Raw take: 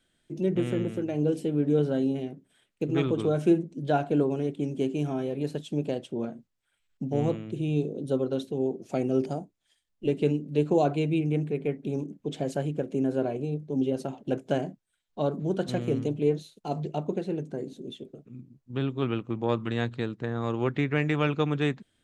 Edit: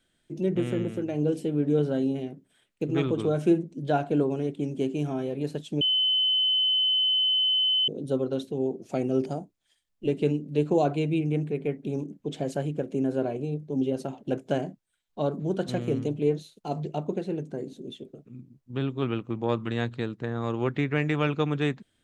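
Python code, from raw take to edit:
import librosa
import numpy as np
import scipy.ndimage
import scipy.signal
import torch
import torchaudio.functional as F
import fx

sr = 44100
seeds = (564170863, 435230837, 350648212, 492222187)

y = fx.edit(x, sr, fx.bleep(start_s=5.81, length_s=2.07, hz=3040.0, db=-20.5), tone=tone)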